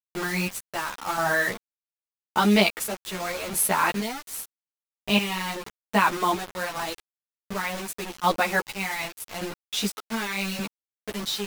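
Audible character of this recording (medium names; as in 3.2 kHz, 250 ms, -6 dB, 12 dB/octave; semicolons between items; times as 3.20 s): chopped level 0.85 Hz, depth 65%, duty 40%; a quantiser's noise floor 6-bit, dither none; a shimmering, thickened sound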